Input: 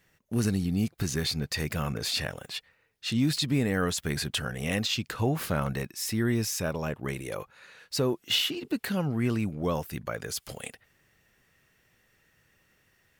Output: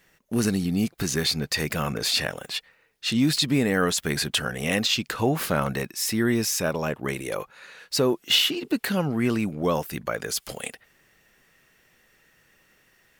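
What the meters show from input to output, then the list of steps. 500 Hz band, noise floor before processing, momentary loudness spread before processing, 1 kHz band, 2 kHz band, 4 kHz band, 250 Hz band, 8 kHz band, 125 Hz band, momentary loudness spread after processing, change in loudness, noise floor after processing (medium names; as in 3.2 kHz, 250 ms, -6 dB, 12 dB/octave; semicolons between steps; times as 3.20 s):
+5.5 dB, -68 dBFS, 10 LU, +6.0 dB, +6.0 dB, +6.0 dB, +4.0 dB, +6.0 dB, +0.5 dB, 9 LU, +4.5 dB, -63 dBFS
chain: peaking EQ 90 Hz -10 dB 1.3 oct; trim +6 dB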